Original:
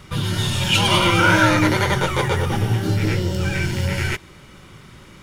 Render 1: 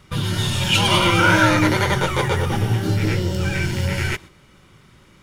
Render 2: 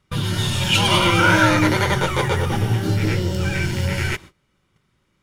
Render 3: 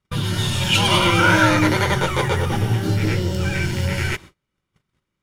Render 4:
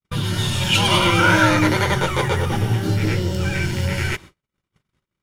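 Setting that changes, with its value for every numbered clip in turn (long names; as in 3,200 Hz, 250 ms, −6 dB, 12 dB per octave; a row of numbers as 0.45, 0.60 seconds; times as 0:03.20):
noise gate, range: −7, −23, −35, −58 decibels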